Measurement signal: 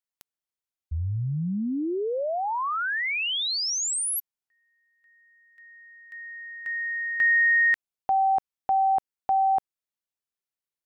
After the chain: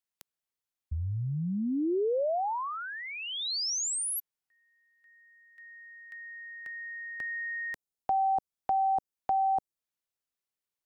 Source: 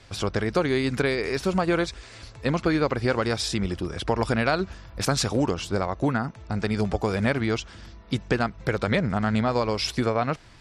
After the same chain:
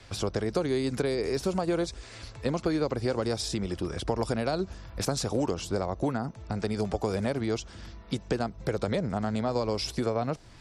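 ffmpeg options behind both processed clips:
-filter_complex "[0:a]acrossover=split=350|870|4400[a][b][c][d];[a]acompressor=threshold=-31dB:ratio=4[e];[b]acompressor=threshold=-27dB:ratio=4[f];[c]acompressor=threshold=-45dB:ratio=4[g];[d]acompressor=threshold=-32dB:ratio=4[h];[e][f][g][h]amix=inputs=4:normalize=0"

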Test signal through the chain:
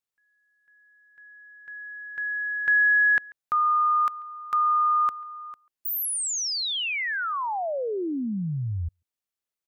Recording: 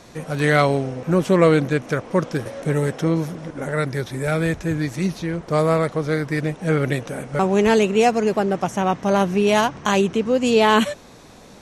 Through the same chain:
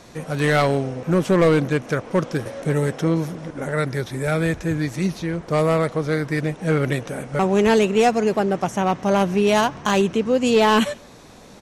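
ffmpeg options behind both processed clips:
-filter_complex "[0:a]aeval=exprs='clip(val(0),-1,0.282)':c=same,asplit=2[a][b];[b]adelay=140,highpass=300,lowpass=3.4k,asoftclip=type=hard:threshold=-16.5dB,volume=-24dB[c];[a][c]amix=inputs=2:normalize=0"

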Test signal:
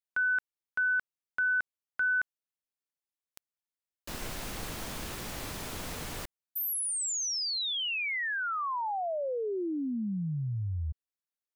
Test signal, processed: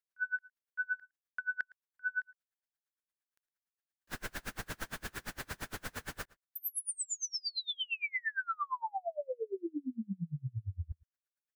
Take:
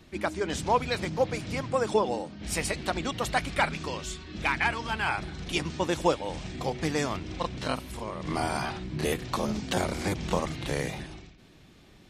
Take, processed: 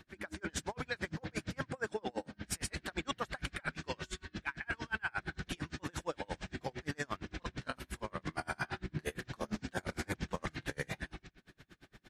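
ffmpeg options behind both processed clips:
-filter_complex "[0:a]equalizer=f=1.6k:w=2.7:g=11.5,areverse,acompressor=threshold=-28dB:ratio=16:attack=2.2:release=31:knee=1:detection=rms,areverse,asplit=2[a][b];[b]adelay=110.8,volume=-23dB,highshelf=f=4k:g=-2.49[c];[a][c]amix=inputs=2:normalize=0,aeval=exprs='val(0)*pow(10,-35*(0.5-0.5*cos(2*PI*8.7*n/s))/20)':c=same"

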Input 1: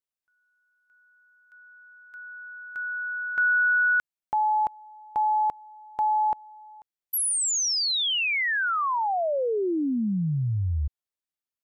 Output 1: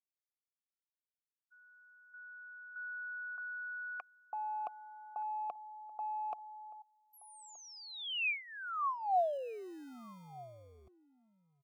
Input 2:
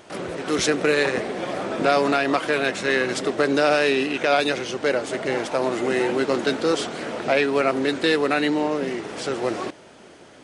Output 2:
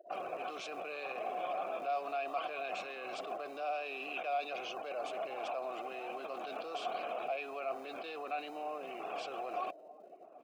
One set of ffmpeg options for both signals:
-filter_complex "[0:a]afftfilt=real='re*gte(hypot(re,im),0.0141)':imag='im*gte(hypot(re,im),0.0141)':win_size=1024:overlap=0.75,areverse,acompressor=threshold=-32dB:ratio=16:attack=2.2:release=44:knee=1:detection=peak,areverse,asplit=3[a][b][c];[a]bandpass=f=730:t=q:w=8,volume=0dB[d];[b]bandpass=f=1.09k:t=q:w=8,volume=-6dB[e];[c]bandpass=f=2.44k:t=q:w=8,volume=-9dB[f];[d][e][f]amix=inputs=3:normalize=0,acrossover=split=230|1500[g][h][i];[g]acrusher=samples=39:mix=1:aa=0.000001[j];[j][h][i]amix=inputs=3:normalize=0,asplit=2[k][l];[l]adelay=1224,volume=-19dB,highshelf=f=4k:g=-27.6[m];[k][m]amix=inputs=2:normalize=0,adynamicequalizer=threshold=0.00112:dfrequency=2000:dqfactor=0.7:tfrequency=2000:tqfactor=0.7:attack=5:release=100:ratio=0.4:range=3:mode=boostabove:tftype=highshelf,volume=6.5dB"

